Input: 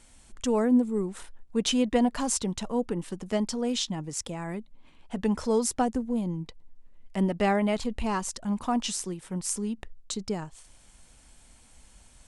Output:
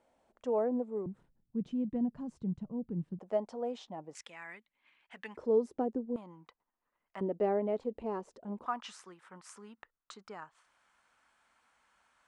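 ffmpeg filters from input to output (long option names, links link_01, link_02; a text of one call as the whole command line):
ffmpeg -i in.wav -af "asetnsamples=nb_out_samples=441:pad=0,asendcmd='1.06 bandpass f 150;3.19 bandpass f 650;4.15 bandpass f 2000;5.37 bandpass f 390;6.16 bandpass f 1200;7.21 bandpass f 450;8.66 bandpass f 1300',bandpass=frequency=610:width_type=q:width=2.2:csg=0" out.wav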